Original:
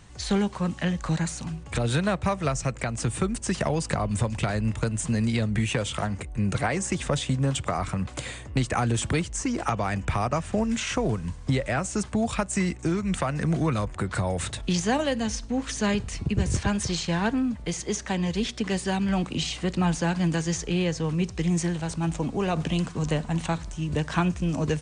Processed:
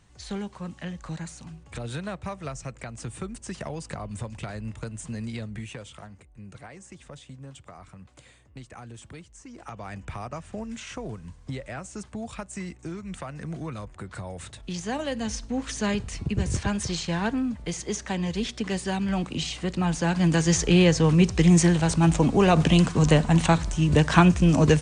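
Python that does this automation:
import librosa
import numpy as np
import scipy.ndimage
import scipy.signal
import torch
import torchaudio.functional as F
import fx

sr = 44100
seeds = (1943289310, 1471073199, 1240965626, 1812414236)

y = fx.gain(x, sr, db=fx.line((5.37, -9.0), (6.28, -18.5), (9.44, -18.5), (9.91, -10.0), (14.57, -10.0), (15.32, -1.5), (19.86, -1.5), (20.64, 7.5)))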